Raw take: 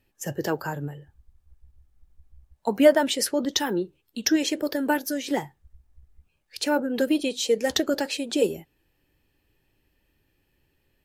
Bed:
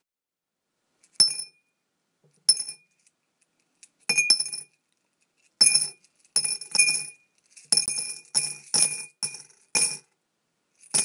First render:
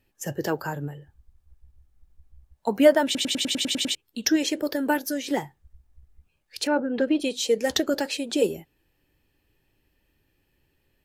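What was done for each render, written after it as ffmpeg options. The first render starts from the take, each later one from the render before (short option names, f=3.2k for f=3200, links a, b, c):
-filter_complex "[0:a]asettb=1/sr,asplit=3[a][b][c];[a]atrim=end=6.674[d];[b]atrim=start=6.67:end=7.2,asetpts=PTS-STARTPTS,afade=t=in:d=0.004:c=qsin,afade=t=out:st=0.526:d=0.004:c=qsin,lowpass=2.9k[e];[c]atrim=start=7.196[f];[d][e]acrossfade=d=0.004:c1=hsin:c2=qsin[g];[g][f]acrossfade=d=0.004:c1=qsin:c2=hsin,asplit=10[h][i][j][k][l][m][n][o][p][q];[h]atrim=end=3.152[r];[i]atrim=start=3.048:end=3.152[s];[j]atrim=start=3.048:end=3.152[t];[k]atrim=start=3.048:end=3.152[u];[l]atrim=start=3.048:end=3.152[v];[m]atrim=start=3.048:end=3.152[w];[n]atrim=start=3.048:end=3.152[x];[o]atrim=start=3.048:end=3.152[y];[p]atrim=start=3.048:end=3.152[z];[q]atrim=start=3.948[aa];[r][s]acrossfade=d=0.004:c1=hsin:c2=hsin[ab];[ab][t]acrossfade=d=0.004:c1=hsin:c2=hsin[ac];[ac][u]acrossfade=d=0.004:c1=hsin:c2=hsin[ad];[ad][v]acrossfade=d=0.004:c1=hsin:c2=hsin[ae];[ae][w]acrossfade=d=0.004:c1=hsin:c2=hsin[af];[af][x]acrossfade=d=0.004:c1=hsin:c2=hsin[ag];[ag][y]acrossfade=d=0.004:c1=hsin:c2=hsin[ah];[ah][z]acrossfade=d=0.004:c1=hsin:c2=hsin[ai];[ai][aa]acrossfade=d=0.004:c1=hsin:c2=hsin"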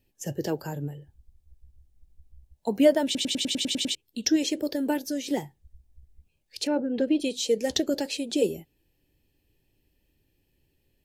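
-filter_complex "[0:a]acrossover=split=8400[a][b];[b]acompressor=threshold=-45dB:ratio=4:attack=1:release=60[c];[a][c]amix=inputs=2:normalize=0,equalizer=f=1.3k:t=o:w=1.3:g=-12.5"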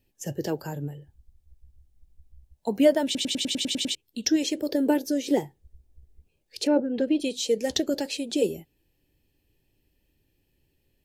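-filter_complex "[0:a]asettb=1/sr,asplit=3[a][b][c];[a]atrim=end=4.694[d];[b]atrim=start=4.69:end=6.8,asetpts=PTS-STARTPTS,afade=t=in:d=0.004:c=qsin,afade=t=out:st=2.106:d=0.004:c=qsin,equalizer=f=420:w=1.2:g=8[e];[c]atrim=start=6.796[f];[d][e]acrossfade=d=0.004:c1=hsin:c2=qsin[g];[g][f]acrossfade=d=0.004:c1=qsin:c2=hsin"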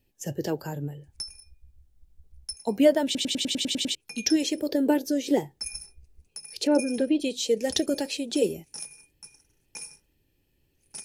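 -filter_complex "[1:a]volume=-17.5dB[a];[0:a][a]amix=inputs=2:normalize=0"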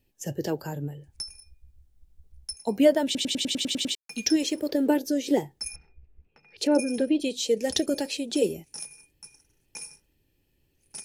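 -filter_complex "[0:a]asettb=1/sr,asplit=3[a][b][c];[a]atrim=end=3.554[d];[b]atrim=start=3.55:end=4.97,asetpts=PTS-STARTPTS,afade=t=in:d=0.004:c=qsin,afade=t=out:st=1.416:d=0.004:c=qsin,aeval=exprs='sgn(val(0))*max(abs(val(0))-0.002,0)':c=same[e];[c]atrim=start=4.966[f];[d][e]acrossfade=d=0.004:c1=hsin:c2=qsin[g];[g][f]acrossfade=d=0.004:c1=qsin:c2=hsin,asplit=3[h][i][j];[h]afade=t=out:st=5.74:d=0.02[k];[i]lowpass=f=2.7k:w=0.5412,lowpass=f=2.7k:w=1.3066,afade=t=in:st=5.74:d=0.02,afade=t=out:st=6.57:d=0.02[l];[j]afade=t=in:st=6.57:d=0.02[m];[k][l][m]amix=inputs=3:normalize=0"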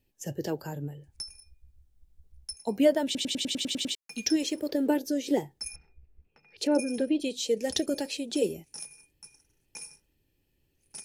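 -af "volume=-3dB"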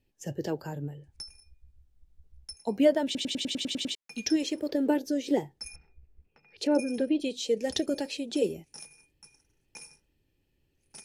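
-af "highshelf=f=8.3k:g=-10.5"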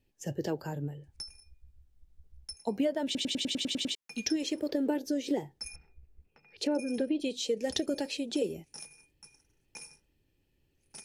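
-af "acompressor=threshold=-26dB:ratio=6"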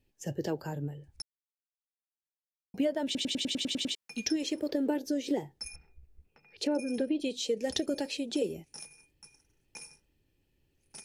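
-filter_complex "[0:a]asplit=3[a][b][c];[a]atrim=end=1.22,asetpts=PTS-STARTPTS,afade=t=out:st=1.216:d=0.004:c=hsin[d];[b]atrim=start=1.22:end=2.74,asetpts=PTS-STARTPTS,volume=0[e];[c]atrim=start=2.74,asetpts=PTS-STARTPTS,afade=t=in:d=0.004:c=hsin[f];[d][e][f]concat=n=3:v=0:a=1"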